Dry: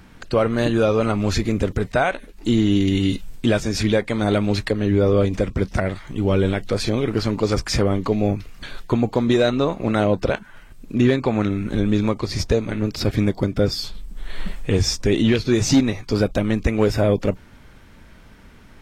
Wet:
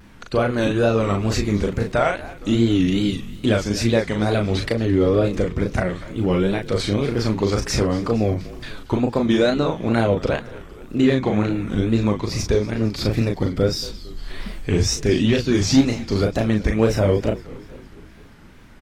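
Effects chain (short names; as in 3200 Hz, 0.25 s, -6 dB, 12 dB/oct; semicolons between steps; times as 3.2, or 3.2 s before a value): doubler 37 ms -4 dB; frequency-shifting echo 0.232 s, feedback 62%, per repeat -48 Hz, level -18 dB; wow and flutter 130 cents; gain -1.5 dB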